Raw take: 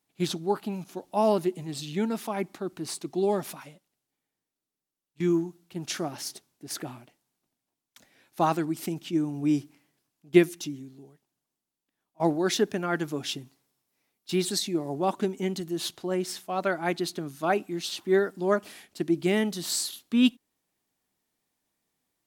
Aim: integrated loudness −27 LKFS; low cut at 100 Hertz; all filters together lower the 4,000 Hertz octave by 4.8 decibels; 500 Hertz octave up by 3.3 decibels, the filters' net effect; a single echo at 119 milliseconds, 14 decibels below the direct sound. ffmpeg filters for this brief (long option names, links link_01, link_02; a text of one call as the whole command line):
ffmpeg -i in.wav -af "highpass=100,equalizer=frequency=500:width_type=o:gain=5,equalizer=frequency=4000:width_type=o:gain=-6,aecho=1:1:119:0.2,volume=-0.5dB" out.wav